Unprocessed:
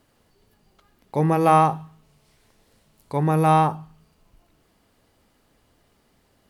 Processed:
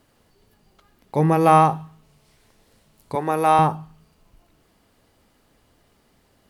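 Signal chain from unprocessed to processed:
0:03.15–0:03.59: high-pass filter 370 Hz 12 dB per octave
level +2 dB

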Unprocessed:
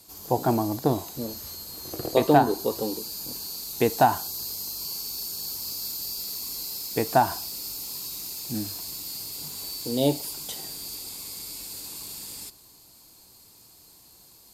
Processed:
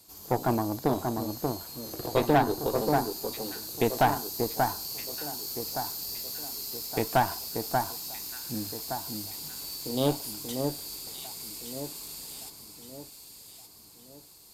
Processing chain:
delay that swaps between a low-pass and a high-pass 584 ms, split 1,600 Hz, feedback 65%, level −4.5 dB
tube saturation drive 15 dB, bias 0.7

